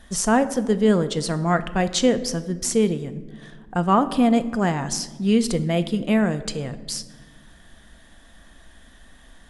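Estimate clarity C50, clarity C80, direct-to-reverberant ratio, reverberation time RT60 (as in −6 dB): 14.5 dB, 16.5 dB, 10.5 dB, 1.4 s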